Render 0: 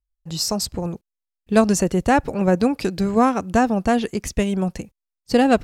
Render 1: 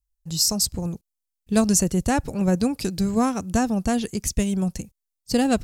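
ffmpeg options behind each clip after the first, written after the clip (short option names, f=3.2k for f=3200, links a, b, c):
-af "bass=f=250:g=9,treble=f=4k:g=14,volume=-7.5dB"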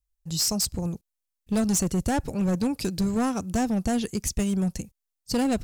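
-filter_complex "[0:a]asplit=2[a][b];[b]alimiter=limit=-14dB:level=0:latency=1,volume=-0.5dB[c];[a][c]amix=inputs=2:normalize=0,volume=12.5dB,asoftclip=hard,volume=-12.5dB,volume=-7dB"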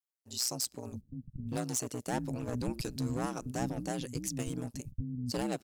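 -filter_complex "[0:a]acrossover=split=210[a][b];[a]adelay=610[c];[c][b]amix=inputs=2:normalize=0,aeval=exprs='val(0)*sin(2*PI*62*n/s)':c=same,volume=-5dB"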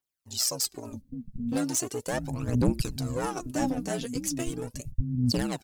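-af "aphaser=in_gain=1:out_gain=1:delay=4.7:decay=0.65:speed=0.38:type=triangular,volume=3.5dB"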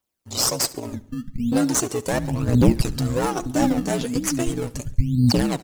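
-filter_complex "[0:a]asplit=2[a][b];[b]acrusher=samples=20:mix=1:aa=0.000001:lfo=1:lforange=20:lforate=1.1,volume=-7.5dB[c];[a][c]amix=inputs=2:normalize=0,aecho=1:1:70|140|210|280:0.1|0.052|0.027|0.0141,volume=5.5dB"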